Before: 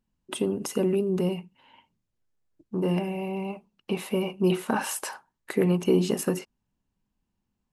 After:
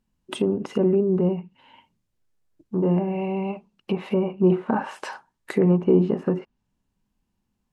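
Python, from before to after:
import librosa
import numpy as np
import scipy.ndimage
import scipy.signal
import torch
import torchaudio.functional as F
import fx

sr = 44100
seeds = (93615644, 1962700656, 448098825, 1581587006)

y = fx.env_lowpass_down(x, sr, base_hz=1200.0, full_db=-24.0)
y = fx.hpss(y, sr, part='harmonic', gain_db=3)
y = F.gain(torch.from_numpy(y), 2.0).numpy()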